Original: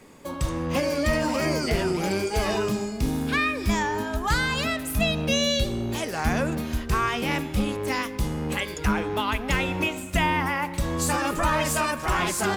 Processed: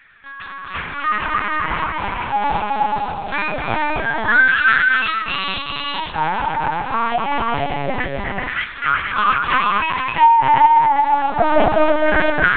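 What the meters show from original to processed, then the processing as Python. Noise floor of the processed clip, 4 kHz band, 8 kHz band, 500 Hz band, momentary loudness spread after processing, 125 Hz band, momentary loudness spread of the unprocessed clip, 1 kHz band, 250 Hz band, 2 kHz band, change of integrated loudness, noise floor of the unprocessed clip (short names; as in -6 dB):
-32 dBFS, +2.5 dB, under -40 dB, +4.5 dB, 11 LU, -4.0 dB, 5 LU, +13.0 dB, -1.5 dB, +11.0 dB, +8.0 dB, -35 dBFS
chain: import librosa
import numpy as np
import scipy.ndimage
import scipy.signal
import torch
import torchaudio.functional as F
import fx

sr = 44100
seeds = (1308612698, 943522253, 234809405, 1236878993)

p1 = fx.filter_lfo_highpass(x, sr, shape='saw_down', hz=0.25, low_hz=570.0, high_hz=1700.0, q=6.0)
p2 = p1 + fx.echo_multitap(p1, sr, ms=(251, 260, 381, 382, 477), db=(-9.5, -7.0, -6.0, -15.0, -4.0), dry=0)
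p3 = fx.rev_schroeder(p2, sr, rt60_s=1.1, comb_ms=30, drr_db=15.0)
p4 = fx.lpc_vocoder(p3, sr, seeds[0], excitation='pitch_kept', order=8)
y = p4 * librosa.db_to_amplitude(1.0)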